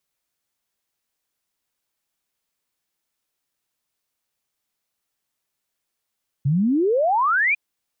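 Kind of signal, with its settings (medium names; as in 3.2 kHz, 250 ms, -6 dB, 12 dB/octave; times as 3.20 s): log sweep 130 Hz -> 2.5 kHz 1.10 s -16 dBFS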